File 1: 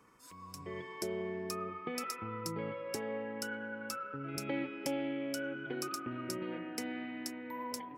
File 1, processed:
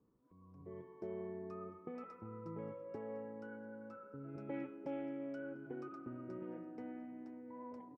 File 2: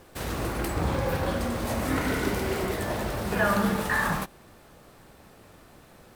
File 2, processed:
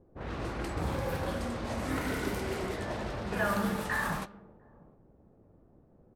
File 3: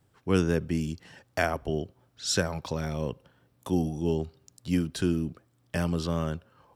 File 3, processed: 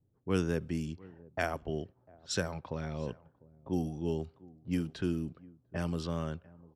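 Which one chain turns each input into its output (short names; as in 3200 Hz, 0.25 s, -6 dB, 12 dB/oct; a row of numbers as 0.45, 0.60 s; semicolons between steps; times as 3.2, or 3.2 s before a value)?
echo 0.7 s -22 dB; low-pass opened by the level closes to 400 Hz, open at -23 dBFS; gain -6 dB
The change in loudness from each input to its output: -8.0, -6.0, -6.0 LU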